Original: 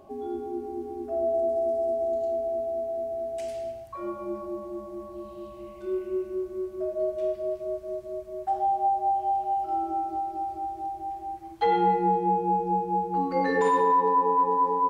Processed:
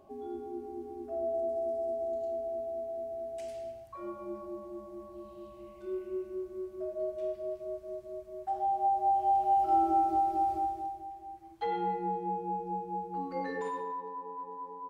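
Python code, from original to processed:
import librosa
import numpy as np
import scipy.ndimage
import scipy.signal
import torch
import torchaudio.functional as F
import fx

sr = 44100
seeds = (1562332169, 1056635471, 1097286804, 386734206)

y = fx.gain(x, sr, db=fx.line((8.46, -7.0), (9.73, 2.5), (10.57, 2.5), (11.11, -10.0), (13.39, -10.0), (14.11, -19.0)))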